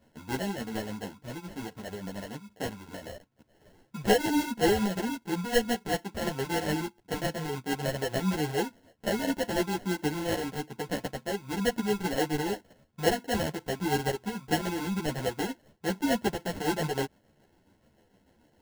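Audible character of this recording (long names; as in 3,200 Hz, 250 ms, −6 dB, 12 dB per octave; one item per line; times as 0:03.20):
tremolo triangle 6.9 Hz, depth 50%
aliases and images of a low sample rate 1,200 Hz, jitter 0%
a shimmering, thickened sound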